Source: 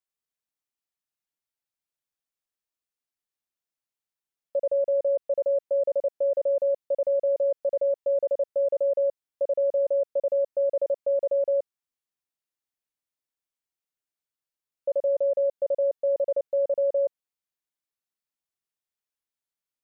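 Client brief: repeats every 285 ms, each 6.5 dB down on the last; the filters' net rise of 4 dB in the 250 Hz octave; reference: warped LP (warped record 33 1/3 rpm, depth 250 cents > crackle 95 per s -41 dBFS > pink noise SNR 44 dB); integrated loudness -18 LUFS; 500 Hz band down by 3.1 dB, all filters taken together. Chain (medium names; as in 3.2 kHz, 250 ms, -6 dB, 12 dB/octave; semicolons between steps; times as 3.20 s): peaking EQ 250 Hz +6.5 dB; peaking EQ 500 Hz -4.5 dB; feedback delay 285 ms, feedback 47%, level -6.5 dB; warped record 33 1/3 rpm, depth 250 cents; crackle 95 per s -41 dBFS; pink noise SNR 44 dB; trim +8 dB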